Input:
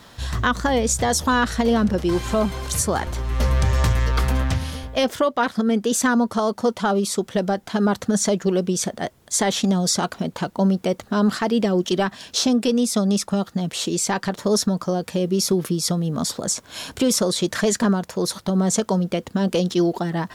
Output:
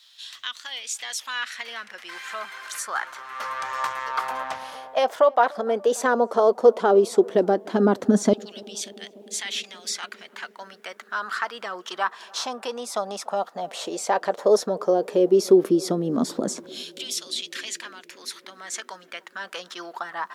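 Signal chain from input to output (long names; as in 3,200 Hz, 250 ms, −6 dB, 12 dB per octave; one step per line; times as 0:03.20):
auto-filter high-pass saw down 0.12 Hz 250–3,700 Hz
high-shelf EQ 2,300 Hz −10.5 dB
tape delay 293 ms, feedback 89%, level −22.5 dB, low-pass 1,100 Hz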